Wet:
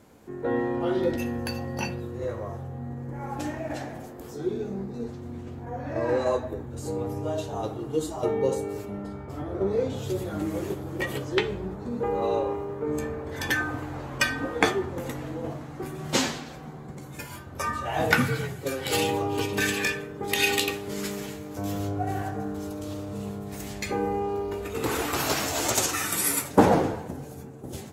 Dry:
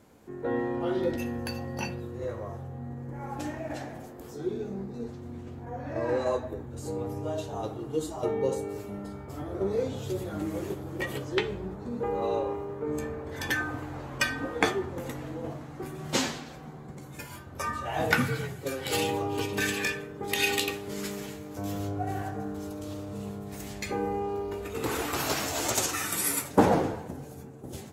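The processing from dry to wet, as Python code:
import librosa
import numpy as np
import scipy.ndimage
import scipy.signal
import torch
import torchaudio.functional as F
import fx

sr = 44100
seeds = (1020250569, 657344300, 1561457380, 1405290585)

y = fx.high_shelf(x, sr, hz=5400.0, db=-9.5, at=(8.85, 9.9))
y = F.gain(torch.from_numpy(y), 3.0).numpy()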